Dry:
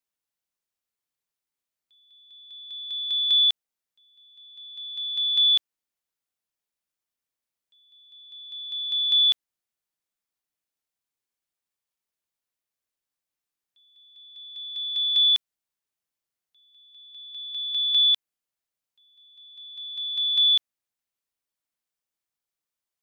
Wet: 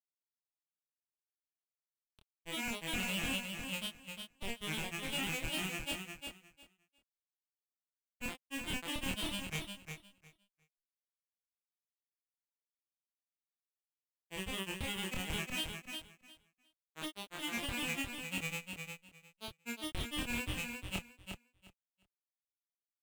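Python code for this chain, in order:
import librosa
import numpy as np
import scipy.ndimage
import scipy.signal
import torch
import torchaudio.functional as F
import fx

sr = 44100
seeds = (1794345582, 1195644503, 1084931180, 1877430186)

p1 = fx.vocoder_arp(x, sr, chord='bare fifth', root=54, every_ms=408)
p2 = scipy.signal.sosfilt(scipy.signal.butter(4, 2200.0, 'lowpass', fs=sr, output='sos'), p1)
p3 = fx.rider(p2, sr, range_db=10, speed_s=0.5)
p4 = p2 + F.gain(torch.from_numpy(p3), 1.0).numpy()
p5 = fx.quant_dither(p4, sr, seeds[0], bits=12, dither='none')
p6 = fx.schmitt(p5, sr, flips_db=-35.0)
p7 = fx.granulator(p6, sr, seeds[1], grain_ms=100.0, per_s=20.0, spray_ms=546.0, spread_st=3)
p8 = fx.doubler(p7, sr, ms=26.0, db=-3.0)
y = fx.echo_feedback(p8, sr, ms=356, feedback_pct=18, wet_db=-6.0)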